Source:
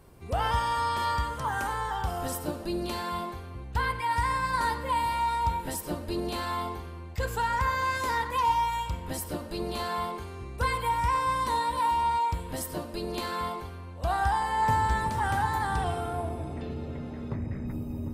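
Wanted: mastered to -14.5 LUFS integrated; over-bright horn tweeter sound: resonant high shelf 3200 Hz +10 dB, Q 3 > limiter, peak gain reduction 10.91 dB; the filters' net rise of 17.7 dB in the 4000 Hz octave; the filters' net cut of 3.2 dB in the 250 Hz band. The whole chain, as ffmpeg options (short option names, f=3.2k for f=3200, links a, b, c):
-af "equalizer=f=250:t=o:g=-4.5,highshelf=f=3.2k:t=q:w=3:g=10,equalizer=f=4k:t=o:g=5,volume=15.5dB,alimiter=limit=-6dB:level=0:latency=1"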